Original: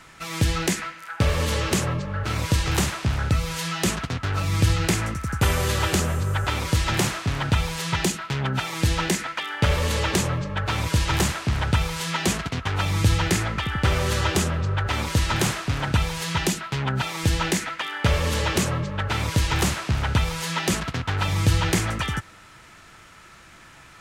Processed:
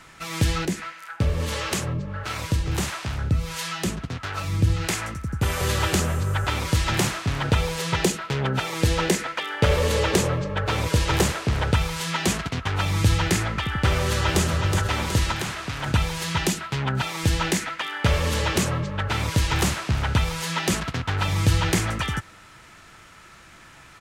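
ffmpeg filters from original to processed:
-filter_complex "[0:a]asettb=1/sr,asplit=3[a][b][c];[a]atrim=end=0.654[d];[b]atrim=start=0.65:end=5.61,asetpts=PTS-STARTPTS,afade=t=in:d=0.004:c=qsin,afade=t=out:st=4.956:d=0.004:c=qsin,acrossover=split=490[e][f];[e]aeval=exprs='val(0)*(1-0.7/2+0.7/2*cos(2*PI*1.5*n/s))':c=same[g];[f]aeval=exprs='val(0)*(1-0.7/2-0.7/2*cos(2*PI*1.5*n/s))':c=same[h];[g][h]amix=inputs=2:normalize=0[i];[c]atrim=start=5.606[j];[d][i]acrossfade=d=0.004:c1=hsin:c2=qsin[k];[k][j]acrossfade=d=0.004:c1=qsin:c2=hsin,asettb=1/sr,asplit=3[l][m][n];[l]atrim=end=7.444[o];[m]atrim=start=7.44:end=11.74,asetpts=PTS-STARTPTS,afade=t=in:d=0.004:c=qsin,afade=t=out:st=4.296:d=0.004:c=qsin,equalizer=f=470:w=2.1:g=8[p];[n]atrim=start=11.736[q];[o][p]acrossfade=d=0.004:c1=hsin:c2=qsin[r];[r][q]acrossfade=d=0.004:c1=qsin:c2=hsin,asplit=2[s][t];[t]afade=t=in:st=13.9:d=0.01,afade=t=out:st=14.44:d=0.01,aecho=0:1:370|740|1110|1480|1850|2220|2590:0.530884|0.291986|0.160593|0.0883259|0.0485792|0.0267186|0.0146952[u];[s][u]amix=inputs=2:normalize=0,asettb=1/sr,asplit=3[v][w][x];[v]atrim=end=15.314[y];[w]atrim=start=15.31:end=15.86,asetpts=PTS-STARTPTS,afade=t=in:d=0.004:c=qsin,afade=t=out:st=0.546:d=0.004:c=qsin,acrossover=split=770|4600[z][aa][ab];[z]acompressor=threshold=-30dB:ratio=4[ac];[aa]acompressor=threshold=-29dB:ratio=4[ad];[ab]acompressor=threshold=-39dB:ratio=4[ae];[ac][ad][ae]amix=inputs=3:normalize=0[af];[x]atrim=start=15.856[ag];[y][af]acrossfade=d=0.004:c1=hsin:c2=qsin[ah];[ah][ag]acrossfade=d=0.004:c1=qsin:c2=hsin"

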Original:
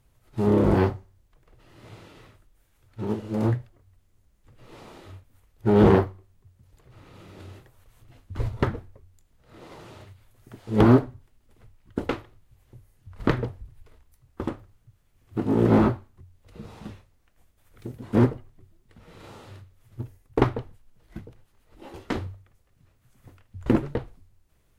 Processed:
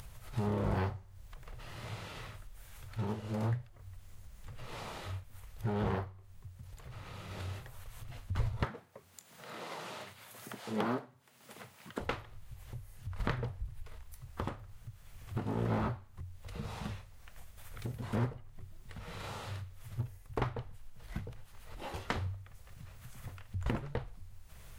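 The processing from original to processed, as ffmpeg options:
-filter_complex "[0:a]asettb=1/sr,asplit=3[a][b][c];[a]atrim=end=8.654[d];[b]atrim=start=8.65:end=12,asetpts=PTS-STARTPTS,afade=t=in:d=0.004:c=qsin,afade=t=out:st=3.346:d=0.004:c=qsin,highpass=f=180:w=0.5412,highpass=f=180:w=1.3066[e];[c]atrim=start=11.996[f];[d][e]acrossfade=d=0.004:c1=hsin:c2=qsin[g];[g][f]acrossfade=d=0.004:c1=qsin:c2=hsin,asplit=3[h][i][j];[h]atrim=end=5.662[k];[i]atrim=start=5.658:end=7.312,asetpts=PTS-STARTPTS,volume=-4.5dB[l];[j]atrim=start=7.308[m];[k][l]acrossfade=d=0.004:c1=hsin:c2=hsin[n];[n][m]acrossfade=d=0.004:c1=hsin:c2=hsin,acompressor=threshold=-36dB:ratio=2.5,equalizer=f=310:w=1.3:g=-12.5,acompressor=mode=upward:threshold=-44dB:ratio=2.5,volume=4.5dB"

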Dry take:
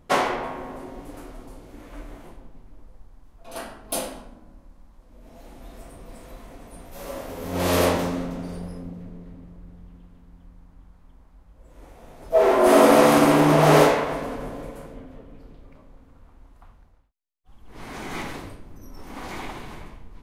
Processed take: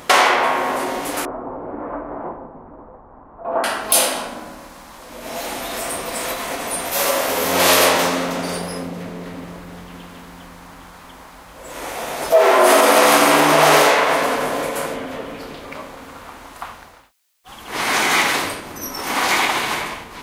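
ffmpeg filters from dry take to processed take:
-filter_complex "[0:a]asettb=1/sr,asplit=3[a][b][c];[a]atrim=end=1.254[d];[b]atrim=start=1.25:end=3.64,asetpts=PTS-STARTPTS,afade=t=in:d=0.004:c=qsin,afade=t=out:st=2.386:d=0.004:c=qsin,lowpass=f=1.1k:w=0.5412,lowpass=f=1.1k:w=1.3066[e];[c]atrim=start=3.636[f];[d][e]acrossfade=d=0.004:c1=hsin:c2=qsin[g];[g][f]acrossfade=d=0.004:c1=qsin:c2=hsin,acompressor=threshold=-41dB:ratio=2.5,highpass=f=1.4k:p=1,alimiter=level_in=30.5dB:limit=-1dB:release=50:level=0:latency=1,volume=-1dB"

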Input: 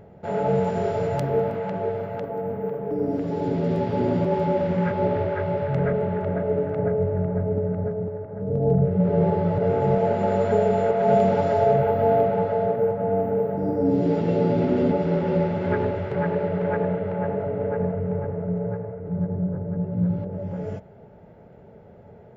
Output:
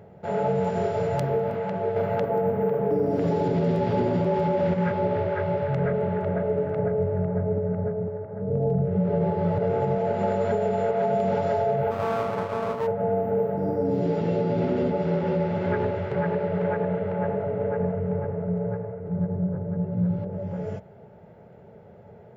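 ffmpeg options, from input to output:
-filter_complex "[0:a]asettb=1/sr,asplit=3[a][b][c];[a]atrim=end=1.964[d];[b]atrim=start=1.96:end=4.74,asetpts=PTS-STARTPTS,afade=t=in:d=0.004:c=qsin,afade=t=out:st=2.776:d=0.004:c=qsin,acontrast=79[e];[c]atrim=start=4.736[f];[d][e]acrossfade=d=0.004:c1=hsin:c2=qsin[g];[g][f]acrossfade=d=0.004:c1=qsin:c2=hsin,asettb=1/sr,asplit=3[h][i][j];[h]atrim=end=7.264[k];[i]atrim=start=7.26:end=8.57,asetpts=PTS-STARTPTS,afade=t=in:d=0.004:c=qsin,afade=t=out:st=1.306:d=0.004:c=qsin,lowpass=f=2.8k:w=0.5412,lowpass=f=2.8k:w=1.3066[l];[j]atrim=start=8.566[m];[k][l]acrossfade=d=0.004:c1=hsin:c2=qsin[n];[n][m]acrossfade=d=0.004:c1=qsin:c2=hsin,asplit=3[o][p][q];[o]afade=t=out:st=11.9:d=0.02[r];[p]aeval=exprs='max(val(0),0)':c=same,afade=t=in:st=11.9:d=0.02,afade=t=out:st=12.86:d=0.02[s];[q]afade=t=in:st=12.86:d=0.02[t];[r][s][t]amix=inputs=3:normalize=0,highpass=74,equalizer=f=280:w=4:g=-6.5,alimiter=limit=-15.5dB:level=0:latency=1:release=123"

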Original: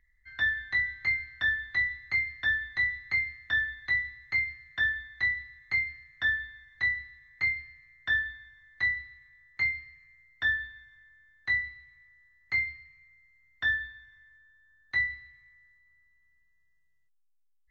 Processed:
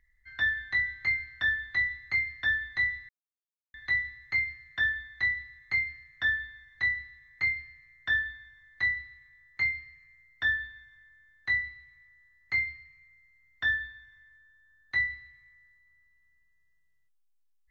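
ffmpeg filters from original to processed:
-filter_complex "[0:a]asplit=3[a][b][c];[a]atrim=end=3.09,asetpts=PTS-STARTPTS,afade=t=out:st=3.086:d=0.004:c=hsin[d];[b]atrim=start=3.09:end=3.74,asetpts=PTS-STARTPTS,volume=0[e];[c]atrim=start=3.74,asetpts=PTS-STARTPTS,afade=t=in:d=0.004:c=hsin[f];[d][e][f]concat=n=3:v=0:a=1"

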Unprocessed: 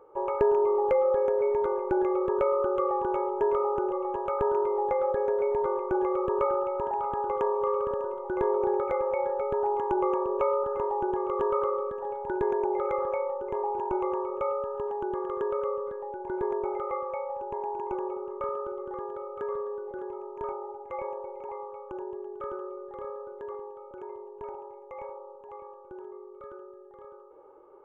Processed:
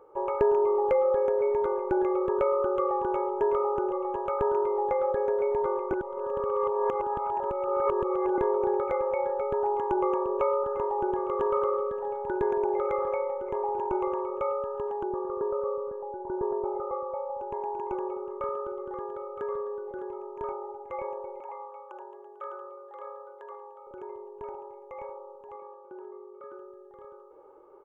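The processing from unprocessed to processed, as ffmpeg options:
-filter_complex "[0:a]asplit=3[a][b][c];[a]afade=t=out:st=10.97:d=0.02[d];[b]aecho=1:1:164|328|492|656:0.15|0.0718|0.0345|0.0165,afade=t=in:st=10.97:d=0.02,afade=t=out:st=14.2:d=0.02[e];[c]afade=t=in:st=14.2:d=0.02[f];[d][e][f]amix=inputs=3:normalize=0,asettb=1/sr,asplit=3[g][h][i];[g]atrim=end=15.034[j];[h]atrim=start=15.03:end=17.41,asetpts=PTS-STARTPTS,afade=t=in:d=0.004:c=qsin,afade=t=out:st=2.376:d=0.004:c=qsin,lowpass=f=1.2k:w=0.5412,lowpass=f=1.2k:w=1.3066[k];[i]atrim=start=17.406[l];[j][k]acrossfade=d=0.004:c1=hsin:c2=qsin[m];[m][l]acrossfade=d=0.004:c1=qsin:c2=hsin,asettb=1/sr,asplit=3[n][o][p];[n]atrim=end=21.404[q];[o]atrim=start=21.4:end=23.87,asetpts=PTS-STARTPTS,afade=t=in:d=0.004:c=qsin,afade=t=out:st=2.466:d=0.004:c=qsin,highpass=f=530:w=0.5412,highpass=f=530:w=1.3066[r];[p]atrim=start=23.866[s];[q][r]acrossfade=d=0.004:c1=hsin:c2=qsin[t];[t][s]acrossfade=d=0.004:c1=qsin:c2=hsin,asettb=1/sr,asplit=3[u][v][w];[u]atrim=end=25.554[x];[v]atrim=start=25.55:end=26.53,asetpts=PTS-STARTPTS,afade=t=in:d=0.004:c=qsin,afade=t=out:st=0.976:d=0.004:c=qsin,highpass=250,lowpass=2.4k[y];[w]atrim=start=26.526[z];[x][y]acrossfade=d=0.004:c1=hsin:c2=qsin[aa];[aa][z]acrossfade=d=0.004:c1=qsin:c2=hsin,asplit=3[ab][ac][ad];[ab]atrim=end=5.932[ae];[ac]atrim=start=5.928:end=8.382,asetpts=PTS-STARTPTS,areverse[af];[ad]atrim=start=8.378[ag];[ae][af]acrossfade=d=0.004:c1=hsin:c2=hsin[ah];[ah][ag]acrossfade=d=0.004:c1=hsin:c2=hsin"

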